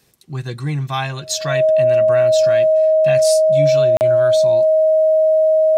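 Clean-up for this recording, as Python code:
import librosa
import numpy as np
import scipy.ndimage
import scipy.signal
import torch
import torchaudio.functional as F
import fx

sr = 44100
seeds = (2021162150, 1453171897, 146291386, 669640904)

y = fx.notch(x, sr, hz=630.0, q=30.0)
y = fx.fix_interpolate(y, sr, at_s=(3.97,), length_ms=39.0)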